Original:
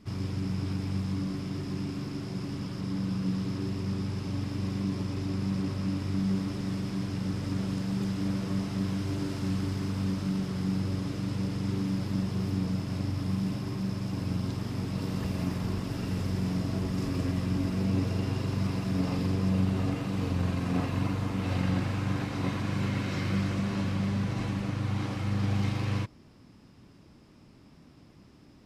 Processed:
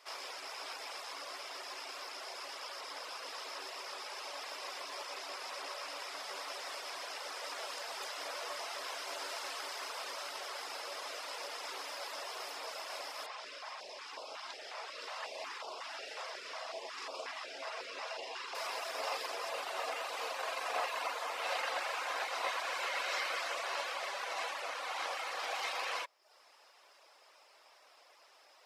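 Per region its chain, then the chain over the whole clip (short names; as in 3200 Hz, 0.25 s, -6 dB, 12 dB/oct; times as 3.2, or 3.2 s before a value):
13.26–18.55 air absorption 82 m + stepped notch 5.5 Hz 280–1800 Hz
whole clip: steep high-pass 560 Hz 36 dB/oct; reverb removal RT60 0.59 s; gain +5 dB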